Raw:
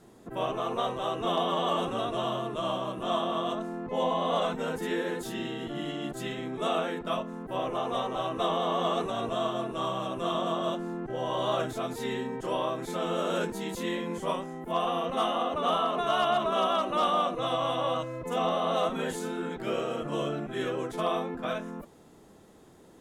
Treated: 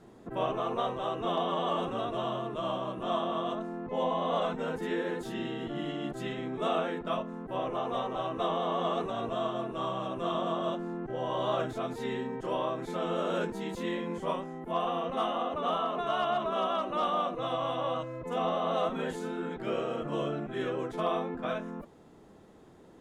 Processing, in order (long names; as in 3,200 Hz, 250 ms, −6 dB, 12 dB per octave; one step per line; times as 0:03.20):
low-pass filter 3,000 Hz 6 dB per octave
in parallel at −2 dB: speech leveller 2 s
on the sum: level −7 dB